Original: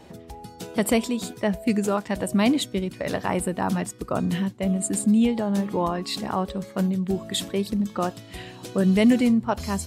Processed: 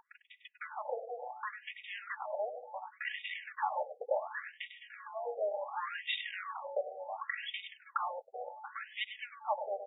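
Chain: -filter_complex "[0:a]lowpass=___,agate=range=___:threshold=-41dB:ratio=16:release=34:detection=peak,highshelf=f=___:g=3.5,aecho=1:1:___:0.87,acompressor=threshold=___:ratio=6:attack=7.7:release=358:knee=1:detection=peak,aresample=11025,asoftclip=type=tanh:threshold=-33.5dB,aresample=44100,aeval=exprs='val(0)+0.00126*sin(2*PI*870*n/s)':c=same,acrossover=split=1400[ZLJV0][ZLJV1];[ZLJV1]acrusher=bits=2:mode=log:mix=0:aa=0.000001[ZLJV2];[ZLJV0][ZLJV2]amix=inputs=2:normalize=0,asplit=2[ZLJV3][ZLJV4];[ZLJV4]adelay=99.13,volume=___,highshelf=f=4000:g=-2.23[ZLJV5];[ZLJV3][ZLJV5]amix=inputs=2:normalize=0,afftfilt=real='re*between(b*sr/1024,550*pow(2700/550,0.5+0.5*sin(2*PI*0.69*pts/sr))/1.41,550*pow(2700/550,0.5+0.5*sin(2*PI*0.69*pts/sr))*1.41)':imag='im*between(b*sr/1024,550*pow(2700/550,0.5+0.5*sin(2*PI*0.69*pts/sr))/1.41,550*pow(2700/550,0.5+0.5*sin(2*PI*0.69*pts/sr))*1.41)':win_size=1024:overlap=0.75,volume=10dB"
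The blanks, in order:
3600, -37dB, 2600, 3.6, -30dB, -10dB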